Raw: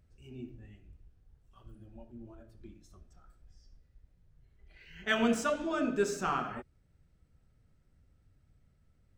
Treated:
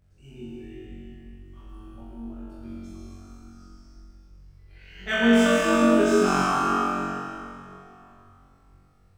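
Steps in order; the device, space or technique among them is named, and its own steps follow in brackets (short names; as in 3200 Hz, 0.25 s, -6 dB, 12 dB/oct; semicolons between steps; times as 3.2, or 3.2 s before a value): tunnel (flutter echo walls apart 3.7 m, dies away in 1.3 s; reverb RT60 3.0 s, pre-delay 0.11 s, DRR -2 dB)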